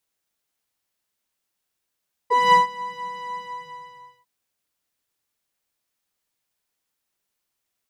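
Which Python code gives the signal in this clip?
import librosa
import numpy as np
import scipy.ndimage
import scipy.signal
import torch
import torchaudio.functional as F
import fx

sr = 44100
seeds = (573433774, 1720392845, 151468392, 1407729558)

y = fx.sub_patch_pwm(sr, seeds[0], note=83, wave2='saw', interval_st=0, detune_cents=10, level2_db=-9.0, sub_db=-23.5, noise_db=-28, kind='bandpass', cutoff_hz=130.0, q=10.0, env_oct=2.0, env_decay_s=0.1, env_sustain_pct=25, attack_ms=224.0, decay_s=0.14, sustain_db=-20.5, release_s=0.93, note_s=1.02, lfo_hz=4.2, width_pct=25, width_swing_pct=15)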